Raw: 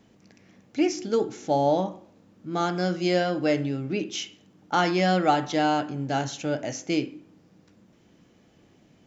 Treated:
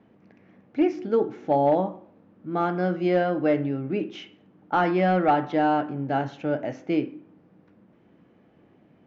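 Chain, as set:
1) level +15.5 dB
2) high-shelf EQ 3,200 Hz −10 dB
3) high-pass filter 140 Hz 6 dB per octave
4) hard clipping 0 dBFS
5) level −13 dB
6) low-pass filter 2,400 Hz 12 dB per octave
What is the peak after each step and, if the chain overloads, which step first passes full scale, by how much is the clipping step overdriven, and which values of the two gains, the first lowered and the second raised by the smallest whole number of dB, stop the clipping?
+8.0, +7.5, +7.0, 0.0, −13.0, −12.5 dBFS
step 1, 7.0 dB
step 1 +8.5 dB, step 5 −6 dB

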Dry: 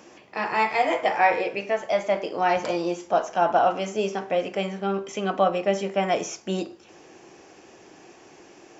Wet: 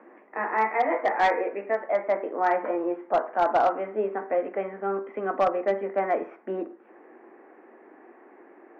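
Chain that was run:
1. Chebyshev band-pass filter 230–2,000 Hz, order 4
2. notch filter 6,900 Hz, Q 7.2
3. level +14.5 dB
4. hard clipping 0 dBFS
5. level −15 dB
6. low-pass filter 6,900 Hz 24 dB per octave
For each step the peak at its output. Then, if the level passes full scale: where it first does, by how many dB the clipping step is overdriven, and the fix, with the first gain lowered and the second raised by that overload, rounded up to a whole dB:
−8.5, −8.5, +6.0, 0.0, −15.0, −14.5 dBFS
step 3, 6.0 dB
step 3 +8.5 dB, step 5 −9 dB

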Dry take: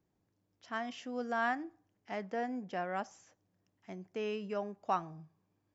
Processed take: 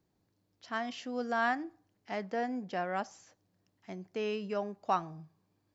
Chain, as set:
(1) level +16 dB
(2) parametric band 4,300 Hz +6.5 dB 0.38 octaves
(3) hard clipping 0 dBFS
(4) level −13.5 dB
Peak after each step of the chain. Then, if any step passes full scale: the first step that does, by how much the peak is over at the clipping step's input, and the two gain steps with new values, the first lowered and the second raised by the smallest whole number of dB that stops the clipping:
−4.0, −4.0, −4.0, −17.5 dBFS
no step passes full scale

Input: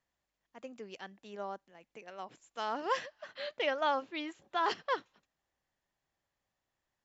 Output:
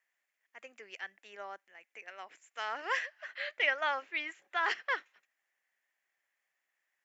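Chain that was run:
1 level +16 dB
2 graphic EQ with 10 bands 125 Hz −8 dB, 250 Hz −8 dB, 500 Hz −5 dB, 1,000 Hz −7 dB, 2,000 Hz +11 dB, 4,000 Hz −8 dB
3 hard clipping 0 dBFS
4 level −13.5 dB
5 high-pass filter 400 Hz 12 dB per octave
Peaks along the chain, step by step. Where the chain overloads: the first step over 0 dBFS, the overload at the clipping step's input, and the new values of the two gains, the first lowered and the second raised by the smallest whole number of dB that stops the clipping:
−2.5, −3.0, −3.0, −16.5, −17.0 dBFS
no step passes full scale

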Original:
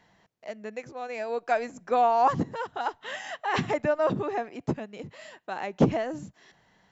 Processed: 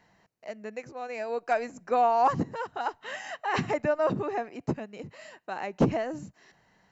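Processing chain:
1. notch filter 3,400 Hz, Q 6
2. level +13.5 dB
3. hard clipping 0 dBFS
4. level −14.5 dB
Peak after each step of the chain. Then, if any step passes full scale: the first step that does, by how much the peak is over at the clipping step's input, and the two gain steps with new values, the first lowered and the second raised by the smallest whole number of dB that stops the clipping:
−10.0, +3.5, 0.0, −14.5 dBFS
step 2, 3.5 dB
step 2 +9.5 dB, step 4 −10.5 dB

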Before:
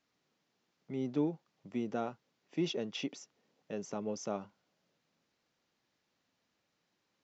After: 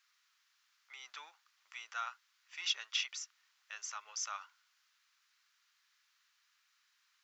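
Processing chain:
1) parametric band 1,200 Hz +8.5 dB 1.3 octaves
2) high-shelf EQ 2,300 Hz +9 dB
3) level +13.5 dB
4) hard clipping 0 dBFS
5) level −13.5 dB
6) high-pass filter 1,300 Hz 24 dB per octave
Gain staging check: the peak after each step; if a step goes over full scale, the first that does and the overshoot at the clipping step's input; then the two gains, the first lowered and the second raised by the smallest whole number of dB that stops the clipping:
−19.5, −18.0, −4.5, −4.5, −18.0, −20.0 dBFS
no step passes full scale

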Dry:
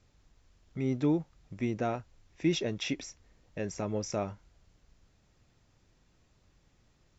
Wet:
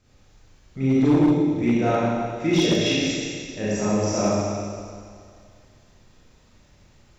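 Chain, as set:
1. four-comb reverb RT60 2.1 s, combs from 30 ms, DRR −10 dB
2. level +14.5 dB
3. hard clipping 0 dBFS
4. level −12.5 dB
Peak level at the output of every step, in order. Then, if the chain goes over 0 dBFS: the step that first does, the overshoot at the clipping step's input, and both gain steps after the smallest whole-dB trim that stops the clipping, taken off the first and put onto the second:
−7.5, +7.0, 0.0, −12.5 dBFS
step 2, 7.0 dB
step 2 +7.5 dB, step 4 −5.5 dB

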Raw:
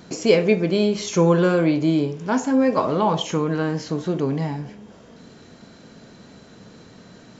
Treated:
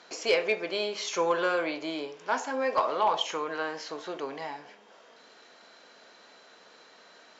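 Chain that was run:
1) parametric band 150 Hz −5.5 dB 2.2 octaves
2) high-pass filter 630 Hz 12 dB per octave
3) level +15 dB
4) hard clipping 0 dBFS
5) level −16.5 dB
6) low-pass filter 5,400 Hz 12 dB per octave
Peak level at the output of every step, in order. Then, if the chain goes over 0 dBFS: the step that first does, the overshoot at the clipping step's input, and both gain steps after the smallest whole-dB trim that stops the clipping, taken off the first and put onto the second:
−6.0, −10.0, +5.0, 0.0, −16.5, −16.0 dBFS
step 3, 5.0 dB
step 3 +10 dB, step 5 −11.5 dB

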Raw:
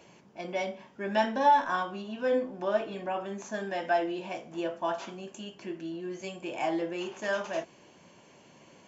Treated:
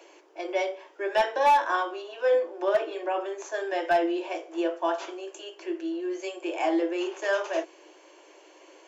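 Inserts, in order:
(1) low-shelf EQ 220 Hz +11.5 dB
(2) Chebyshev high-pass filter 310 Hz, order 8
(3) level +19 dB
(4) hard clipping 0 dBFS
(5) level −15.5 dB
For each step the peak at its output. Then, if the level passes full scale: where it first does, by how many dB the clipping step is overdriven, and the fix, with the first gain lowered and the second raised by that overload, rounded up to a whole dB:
−11.0, −11.5, +7.5, 0.0, −15.5 dBFS
step 3, 7.5 dB
step 3 +11 dB, step 5 −7.5 dB

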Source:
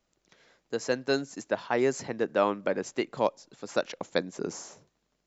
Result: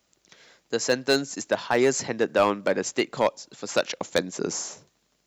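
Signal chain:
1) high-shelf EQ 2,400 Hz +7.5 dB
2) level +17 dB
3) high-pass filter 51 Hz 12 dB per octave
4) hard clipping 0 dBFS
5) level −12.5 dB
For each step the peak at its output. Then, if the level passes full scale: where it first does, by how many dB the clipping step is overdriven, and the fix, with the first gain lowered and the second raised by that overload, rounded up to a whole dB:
−8.0, +9.0, +9.0, 0.0, −12.5 dBFS
step 2, 9.0 dB
step 2 +8 dB, step 5 −3.5 dB

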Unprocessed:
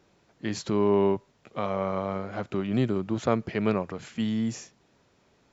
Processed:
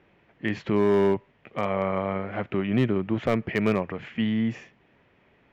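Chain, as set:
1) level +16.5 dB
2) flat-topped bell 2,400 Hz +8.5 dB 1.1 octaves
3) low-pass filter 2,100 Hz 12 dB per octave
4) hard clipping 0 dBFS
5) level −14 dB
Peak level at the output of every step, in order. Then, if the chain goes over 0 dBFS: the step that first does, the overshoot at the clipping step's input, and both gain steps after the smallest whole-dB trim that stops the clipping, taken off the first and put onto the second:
+7.0, +8.5, +8.0, 0.0, −14.0 dBFS
step 1, 8.0 dB
step 1 +8.5 dB, step 5 −6 dB

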